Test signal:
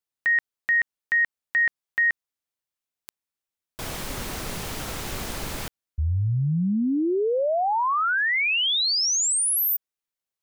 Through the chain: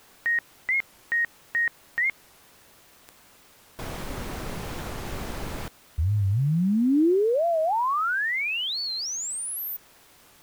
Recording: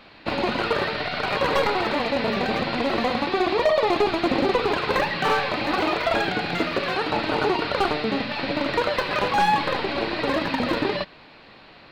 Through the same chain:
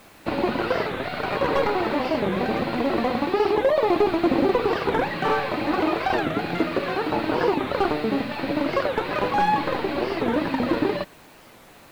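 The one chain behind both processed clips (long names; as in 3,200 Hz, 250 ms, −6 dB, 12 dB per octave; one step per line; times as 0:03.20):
dynamic equaliser 320 Hz, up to +4 dB, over −38 dBFS, Q 2.2
bit-depth reduction 8 bits, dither triangular
high-shelf EQ 2,500 Hz −9.5 dB
wow of a warped record 45 rpm, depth 250 cents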